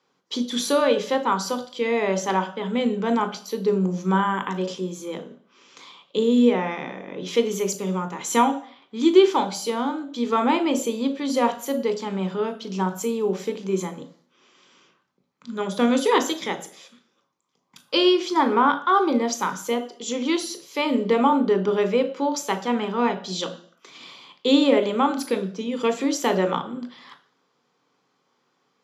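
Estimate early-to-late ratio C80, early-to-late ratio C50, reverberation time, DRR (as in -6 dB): 17.0 dB, 13.0 dB, 0.50 s, 7.5 dB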